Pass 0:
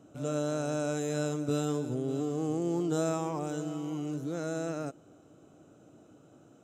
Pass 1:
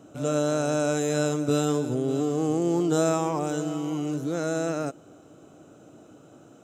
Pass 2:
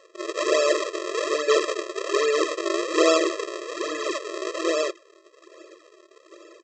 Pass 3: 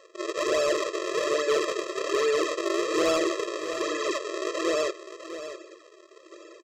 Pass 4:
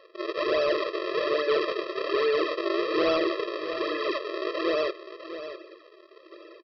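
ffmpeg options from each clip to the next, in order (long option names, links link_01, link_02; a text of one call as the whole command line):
ffmpeg -i in.wav -af "lowshelf=frequency=250:gain=-4,volume=8dB" out.wav
ffmpeg -i in.wav -af "aresample=16000,acrusher=samples=37:mix=1:aa=0.000001:lfo=1:lforange=59.2:lforate=1.2,aresample=44100,afftfilt=real='re*eq(mod(floor(b*sr/1024/340),2),1)':imag='im*eq(mod(floor(b*sr/1024/340),2),1)':win_size=1024:overlap=0.75,volume=8.5dB" out.wav
ffmpeg -i in.wav -filter_complex "[0:a]asplit=2[link_01][link_02];[link_02]alimiter=limit=-16dB:level=0:latency=1:release=21,volume=1dB[link_03];[link_01][link_03]amix=inputs=2:normalize=0,asoftclip=type=tanh:threshold=-10.5dB,aecho=1:1:653:0.266,volume=-6.5dB" out.wav
ffmpeg -i in.wav -af "aresample=11025,aresample=44100" out.wav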